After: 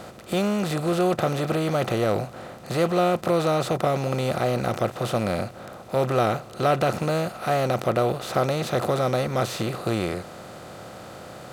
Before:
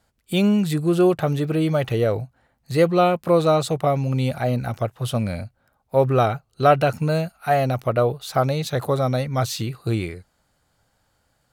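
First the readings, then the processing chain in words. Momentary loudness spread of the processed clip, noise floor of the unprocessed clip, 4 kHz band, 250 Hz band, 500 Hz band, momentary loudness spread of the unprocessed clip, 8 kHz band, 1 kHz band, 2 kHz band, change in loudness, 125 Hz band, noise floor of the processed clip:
17 LU, -69 dBFS, -1.0 dB, -4.0 dB, -2.5 dB, 9 LU, -0.5 dB, -2.0 dB, -0.5 dB, -3.0 dB, -5.0 dB, -42 dBFS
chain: per-bin compression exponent 0.4; gain -8.5 dB

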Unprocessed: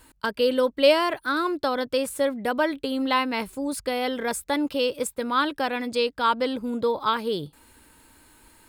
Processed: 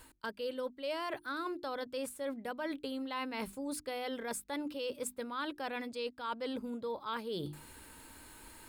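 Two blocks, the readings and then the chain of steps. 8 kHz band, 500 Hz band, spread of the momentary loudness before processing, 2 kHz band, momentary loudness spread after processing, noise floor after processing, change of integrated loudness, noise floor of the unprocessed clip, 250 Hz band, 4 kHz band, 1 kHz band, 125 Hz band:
-9.0 dB, -15.0 dB, 7 LU, -14.0 dB, 7 LU, -62 dBFS, -14.5 dB, -61 dBFS, -13.0 dB, -15.0 dB, -15.0 dB, -7.0 dB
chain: notches 50/100/150/200/250/300/350 Hz; reverse; compressor 6:1, threshold -38 dBFS, peak gain reduction 23 dB; reverse; gain +1 dB

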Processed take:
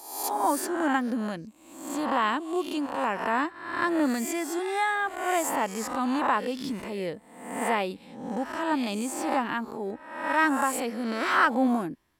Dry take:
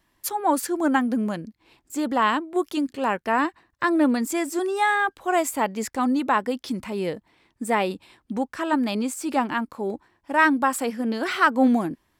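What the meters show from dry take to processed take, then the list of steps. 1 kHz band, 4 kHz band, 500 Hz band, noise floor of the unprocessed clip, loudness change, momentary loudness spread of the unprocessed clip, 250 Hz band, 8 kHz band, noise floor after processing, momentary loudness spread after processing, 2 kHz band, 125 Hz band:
-3.0 dB, -2.5 dB, -4.0 dB, -70 dBFS, -4.0 dB, 10 LU, -5.0 dB, -1.5 dB, -51 dBFS, 11 LU, -3.0 dB, -5.0 dB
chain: spectral swells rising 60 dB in 0.80 s; gain -6 dB

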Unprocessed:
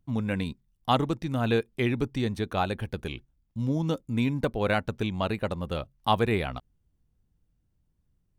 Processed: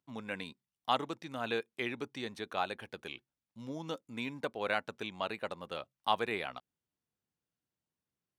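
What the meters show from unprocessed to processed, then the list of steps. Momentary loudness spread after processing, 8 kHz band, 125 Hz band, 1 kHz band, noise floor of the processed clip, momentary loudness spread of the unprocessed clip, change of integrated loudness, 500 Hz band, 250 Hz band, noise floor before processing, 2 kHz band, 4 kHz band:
11 LU, -6.5 dB, -21.0 dB, -6.0 dB, under -85 dBFS, 10 LU, -9.0 dB, -9.0 dB, -14.0 dB, -74 dBFS, -4.5 dB, -4.5 dB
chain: weighting filter A; gain -5.5 dB

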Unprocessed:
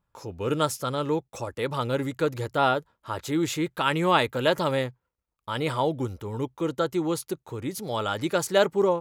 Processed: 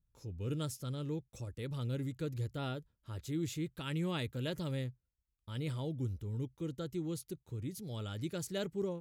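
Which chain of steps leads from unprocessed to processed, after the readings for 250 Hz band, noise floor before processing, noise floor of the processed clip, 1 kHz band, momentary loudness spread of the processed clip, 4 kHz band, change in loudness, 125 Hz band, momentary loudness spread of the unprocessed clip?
-10.5 dB, -83 dBFS, -83 dBFS, -23.5 dB, 7 LU, -14.0 dB, -13.0 dB, -4.5 dB, 11 LU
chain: passive tone stack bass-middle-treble 10-0-1; gain +8.5 dB

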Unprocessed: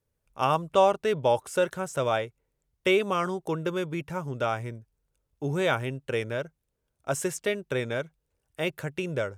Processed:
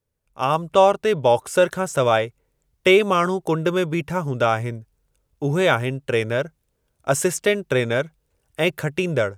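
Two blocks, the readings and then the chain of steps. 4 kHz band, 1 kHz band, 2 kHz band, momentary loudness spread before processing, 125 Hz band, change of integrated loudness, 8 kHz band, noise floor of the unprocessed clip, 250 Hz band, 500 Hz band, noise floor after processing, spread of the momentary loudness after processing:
+8.0 dB, +6.5 dB, +8.0 dB, 11 LU, +8.0 dB, +7.5 dB, +8.5 dB, -80 dBFS, +8.0 dB, +7.5 dB, -72 dBFS, 10 LU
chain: AGC gain up to 9 dB

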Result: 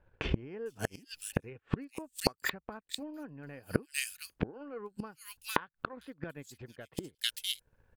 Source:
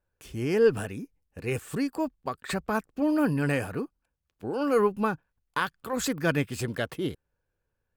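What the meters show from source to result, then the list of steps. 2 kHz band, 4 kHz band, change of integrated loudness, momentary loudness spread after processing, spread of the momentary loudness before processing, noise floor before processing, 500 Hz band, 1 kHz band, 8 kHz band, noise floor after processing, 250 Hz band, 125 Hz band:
-6.5 dB, +3.0 dB, -9.5 dB, 12 LU, 13 LU, -81 dBFS, -13.5 dB, -9.0 dB, -2.0 dB, -80 dBFS, -11.5 dB, -7.5 dB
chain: notch 1200 Hz, Q 16; transient shaper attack +8 dB, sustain -10 dB; in parallel at 0 dB: limiter -17 dBFS, peak gain reduction 10.5 dB; on the sum: bands offset in time lows, highs 0.45 s, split 3200 Hz; flipped gate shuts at -21 dBFS, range -33 dB; gain +7 dB

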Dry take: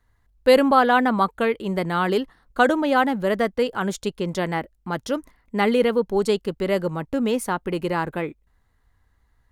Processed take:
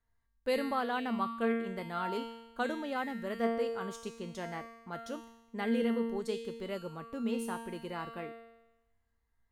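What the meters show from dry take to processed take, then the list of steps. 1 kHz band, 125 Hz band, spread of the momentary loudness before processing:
-15.0 dB, -16.0 dB, 12 LU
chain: resonator 230 Hz, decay 1 s, mix 90%; gain +2 dB

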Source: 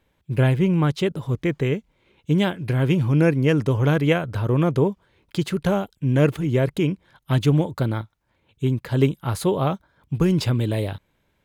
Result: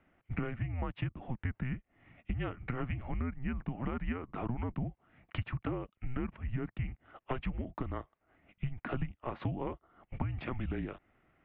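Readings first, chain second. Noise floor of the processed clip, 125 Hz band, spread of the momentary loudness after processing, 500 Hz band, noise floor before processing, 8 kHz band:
-81 dBFS, -17.0 dB, 5 LU, -20.5 dB, -69 dBFS, n/a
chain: low shelf 260 Hz +8.5 dB; mistuned SSB -250 Hz 300–2800 Hz; compressor 12:1, threshold -33 dBFS, peak gain reduction 21 dB; gain +1 dB

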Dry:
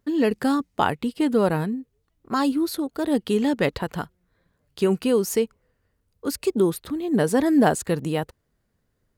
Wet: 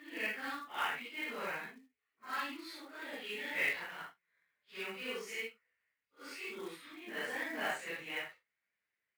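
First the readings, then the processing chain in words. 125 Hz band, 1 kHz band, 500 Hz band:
-32.5 dB, -15.0 dB, -22.5 dB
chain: phase scrambler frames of 0.2 s; band-pass 2200 Hz, Q 4.3; short-mantissa float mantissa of 2-bit; gain +3 dB

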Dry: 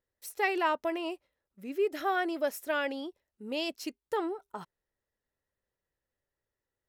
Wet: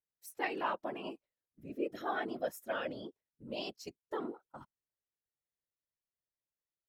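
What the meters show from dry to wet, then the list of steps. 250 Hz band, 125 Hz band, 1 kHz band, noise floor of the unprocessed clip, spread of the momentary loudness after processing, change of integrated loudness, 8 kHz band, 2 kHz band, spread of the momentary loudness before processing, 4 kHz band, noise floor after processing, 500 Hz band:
-6.5 dB, n/a, -7.0 dB, under -85 dBFS, 17 LU, -7.0 dB, -8.0 dB, -8.0 dB, 16 LU, -7.0 dB, under -85 dBFS, -7.5 dB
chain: spectral noise reduction 9 dB; whisperiser; gain -7 dB

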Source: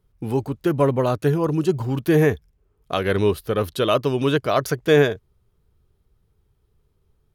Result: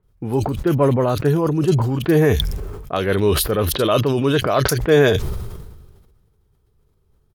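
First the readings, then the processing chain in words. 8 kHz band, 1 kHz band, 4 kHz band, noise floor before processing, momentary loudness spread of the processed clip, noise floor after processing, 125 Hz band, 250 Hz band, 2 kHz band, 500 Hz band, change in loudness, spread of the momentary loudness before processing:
+10.5 dB, +2.0 dB, +5.5 dB, -67 dBFS, 10 LU, -62 dBFS, +4.5 dB, +2.5 dB, +2.0 dB, +2.0 dB, +2.5 dB, 8 LU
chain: bands offset in time lows, highs 30 ms, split 2600 Hz; sustainer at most 38 dB/s; gain +1.5 dB

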